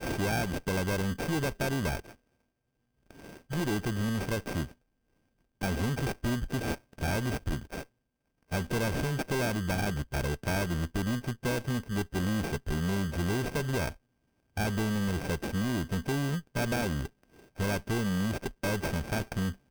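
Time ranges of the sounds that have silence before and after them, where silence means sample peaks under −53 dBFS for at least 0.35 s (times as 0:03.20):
0:03.11–0:04.73
0:05.61–0:07.85
0:08.43–0:13.96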